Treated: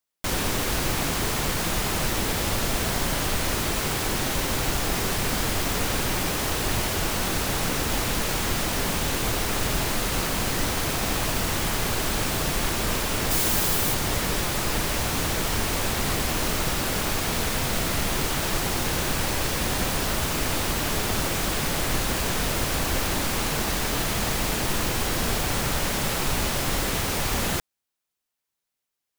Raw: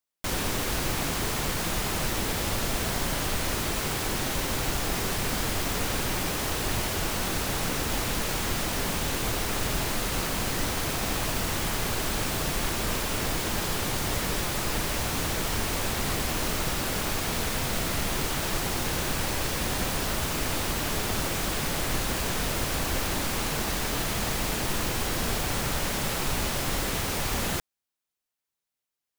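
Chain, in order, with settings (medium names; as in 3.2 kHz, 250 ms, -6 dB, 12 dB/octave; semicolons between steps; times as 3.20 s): 13.30–13.93 s: treble shelf 6.2 kHz -> 11 kHz +10 dB; trim +3 dB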